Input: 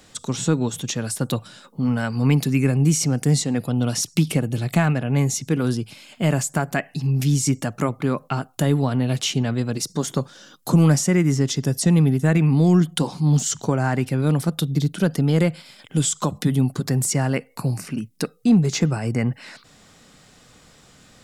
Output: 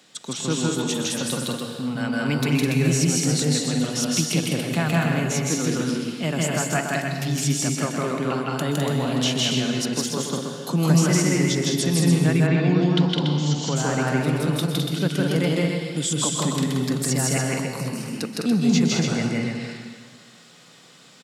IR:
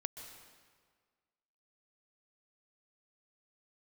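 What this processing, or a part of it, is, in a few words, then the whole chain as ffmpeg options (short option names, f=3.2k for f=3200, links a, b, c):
stadium PA: -filter_complex "[0:a]highpass=f=150:w=0.5412,highpass=f=150:w=1.3066,equalizer=f=3.4k:t=o:w=1.5:g=5.5,aecho=1:1:160.3|207|285.7:1|0.631|0.562[a];[1:a]atrim=start_sample=2205[b];[a][b]afir=irnorm=-1:irlink=0,asplit=3[c][d][e];[c]afade=t=out:st=12.46:d=0.02[f];[d]lowpass=f=5.3k:w=0.5412,lowpass=f=5.3k:w=1.3066,afade=t=in:st=12.46:d=0.02,afade=t=out:st=13.75:d=0.02[g];[e]afade=t=in:st=13.75:d=0.02[h];[f][g][h]amix=inputs=3:normalize=0,volume=-3dB"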